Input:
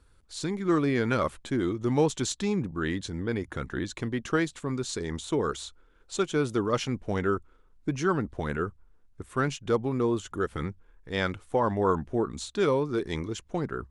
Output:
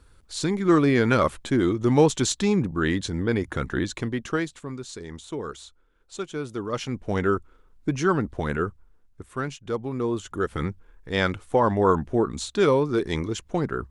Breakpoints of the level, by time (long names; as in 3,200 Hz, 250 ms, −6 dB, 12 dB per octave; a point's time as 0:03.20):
0:03.80 +6 dB
0:04.84 −5 dB
0:06.52 −5 dB
0:07.18 +4 dB
0:08.66 +4 dB
0:09.60 −4 dB
0:10.67 +5 dB